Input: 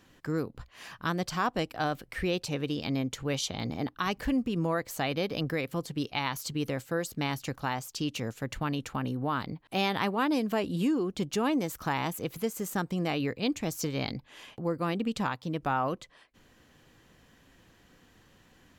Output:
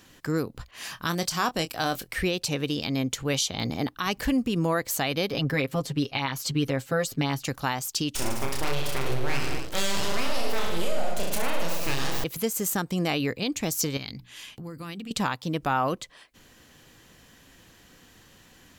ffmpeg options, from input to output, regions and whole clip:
-filter_complex "[0:a]asettb=1/sr,asplit=3[a][b][c];[a]atrim=end=0.714[d];[b]atrim=start=0.71:end=2.08,asetpts=PTS-STARTPTS,afade=t=in:d=0.004:c=qsin,afade=t=out:st=1.366:d=0.004:c=qsin,asplit=2[e][f];[f]adelay=24,volume=-11.5dB[g];[e][g]amix=inputs=2:normalize=0,atrim=end_sample=60417,adynamicequalizer=threshold=0.00355:dfrequency=3900:dqfactor=0.7:tfrequency=3900:tqfactor=0.7:attack=5:release=100:ratio=0.375:range=3:mode=boostabove:tftype=highshelf[h];[c]atrim=start=2.076[i];[d][h]acrossfade=d=0.004:c1=hsin:c2=qsin[j];[j][i]acrossfade=d=0.004:c1=qsin:c2=hsin,asettb=1/sr,asplit=3[k][l][m];[k]atrim=end=5.324[n];[l]atrim=start=5.32:end=7.45,asetpts=PTS-STARTPTS,afade=t=in:d=0.004:c=qsin,afade=t=out:st=2.126:d=0.004:c=qsin,highshelf=f=5.4k:g=-10.5,aecho=1:1:7.4:0.79,atrim=end_sample=93933[o];[m]atrim=start=7.446[p];[n][o]acrossfade=d=0.004:c1=hsin:c2=qsin[q];[q][p]acrossfade=d=0.004:c1=qsin:c2=hsin,asettb=1/sr,asplit=3[r][s][t];[r]atrim=end=8.154[u];[s]atrim=start=8.15:end=12.24,asetpts=PTS-STARTPTS,afade=t=in:d=0.004:c=qsin,afade=t=out:st=4.086:d=0.004:c=qsin,aeval=exprs='abs(val(0))':c=same,aecho=1:1:30|64.5|104.2|149.8|202.3|262.6:0.794|0.631|0.501|0.398|0.316|0.251,atrim=end_sample=180369[v];[t]atrim=start=12.236[w];[u][v]acrossfade=d=0.004:c1=hsin:c2=qsin[x];[x][w]acrossfade=d=0.004:c1=qsin:c2=hsin,asettb=1/sr,asplit=3[y][z][aa];[y]atrim=end=13.974[ab];[z]atrim=start=13.97:end=15.11,asetpts=PTS-STARTPTS,afade=t=in:d=0.004:c=qsin,afade=t=out:st=1.136:d=0.004:c=qsin,equalizer=f=610:t=o:w=2:g=-10.5,acompressor=threshold=-38dB:ratio=4:attack=3.2:release=140:knee=1:detection=peak,bandreject=f=60:t=h:w=6,bandreject=f=120:t=h:w=6,bandreject=f=180:t=h:w=6,bandreject=f=240:t=h:w=6,bandreject=f=300:t=h:w=6,bandreject=f=360:t=h:w=6,bandreject=f=420:t=h:w=6[ac];[aa]atrim=start=15.106[ad];[ab][ac]acrossfade=d=0.004:c1=hsin:c2=qsin[ae];[ae][ad]acrossfade=d=0.004:c1=qsin:c2=hsin,highshelf=f=3.2k:g=8.5,alimiter=limit=-18.5dB:level=0:latency=1:release=184,volume=4dB"

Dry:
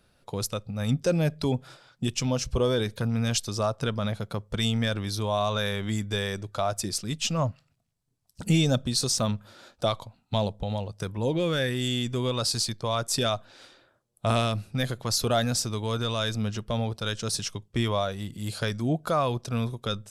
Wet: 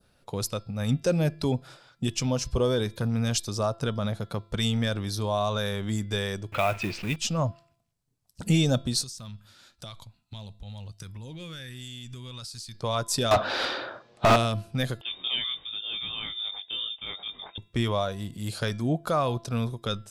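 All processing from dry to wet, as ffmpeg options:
-filter_complex "[0:a]asettb=1/sr,asplit=3[a][b][c];[a]atrim=end=6.524[d];[b]atrim=start=6.52:end=7.16,asetpts=PTS-STARTPTS,afade=t=in:d=0.004:c=qsin,afade=t=out:st=0.636:d=0.004:c=qsin,aeval=exprs='val(0)+0.5*0.0158*sgn(val(0))':c=same,lowpass=f=2.5k:t=q:w=7.4,acrusher=bits=5:mode=log:mix=0:aa=0.000001[e];[c]atrim=start=7.156[f];[d][e]acrossfade=d=0.004:c1=hsin:c2=qsin[g];[g][f]acrossfade=d=0.004:c1=qsin:c2=hsin,asettb=1/sr,asplit=3[h][i][j];[h]atrim=end=9.024[k];[i]atrim=start=9.02:end=12.75,asetpts=PTS-STARTPTS,afade=t=in:d=0.004:c=qsin,afade=t=out:st=3.726:d=0.004:c=qsin,equalizer=f=520:w=0.49:g=-15,acompressor=threshold=-36dB:ratio=12:attack=3.2:release=140:knee=1:detection=peak[l];[j]atrim=start=12.746[m];[k][l]acrossfade=d=0.004:c1=hsin:c2=qsin[n];[n][m]acrossfade=d=0.004:c1=qsin:c2=hsin,asettb=1/sr,asplit=3[o][p][q];[o]atrim=end=13.314[r];[p]atrim=start=13.31:end=14.36,asetpts=PTS-STARTPTS,afade=t=in:d=0.004:c=qsin,afade=t=out:st=1.046:d=0.004:c=qsin,lowpass=f=5.1k:w=0.5412,lowpass=f=5.1k:w=1.3066,asplit=2[s][t];[t]highpass=f=720:p=1,volume=37dB,asoftclip=type=tanh:threshold=-10dB[u];[s][u]amix=inputs=2:normalize=0,lowpass=f=2.4k:p=1,volume=-6dB[v];[q]atrim=start=14.356[w];[r][v]acrossfade=d=0.004:c1=hsin:c2=qsin[x];[x][w]acrossfade=d=0.004:c1=qsin:c2=hsin,asettb=1/sr,asplit=3[y][z][aa];[y]atrim=end=15.014[ab];[z]atrim=start=15.01:end=17.58,asetpts=PTS-STARTPTS,afade=t=in:d=0.004:c=qsin,afade=t=out:st=2.566:d=0.004:c=qsin,lowpass=f=3.1k:t=q:w=0.5098,lowpass=f=3.1k:t=q:w=0.6013,lowpass=f=3.1k:t=q:w=0.9,lowpass=f=3.1k:t=q:w=2.563,afreqshift=-3700,flanger=delay=20:depth=2.1:speed=2.6[ac];[aa]atrim=start=17.576[ad];[ab][ac]acrossfade=d=0.004:c1=hsin:c2=qsin[ae];[ae][ad]acrossfade=d=0.004:c1=qsin:c2=hsin,bandreject=f=338.4:t=h:w=4,bandreject=f=676.8:t=h:w=4,bandreject=f=1.0152k:t=h:w=4,bandreject=f=1.3536k:t=h:w=4,bandreject=f=1.692k:t=h:w=4,bandreject=f=2.0304k:t=h:w=4,bandreject=f=2.3688k:t=h:w=4,bandreject=f=2.7072k:t=h:w=4,bandreject=f=3.0456k:t=h:w=4,bandreject=f=3.384k:t=h:w=4,bandreject=f=3.7224k:t=h:w=4,bandreject=f=4.0608k:t=h:w=4,bandreject=f=4.3992k:t=h:w=4,bandreject=f=4.7376k:t=h:w=4,bandreject=f=5.076k:t=h:w=4,adynamicequalizer=threshold=0.00631:dfrequency=2300:dqfactor=1.1:tfrequency=2300:tqfactor=1.1:attack=5:release=100:ratio=0.375:range=2.5:mode=cutabove:tftype=bell"

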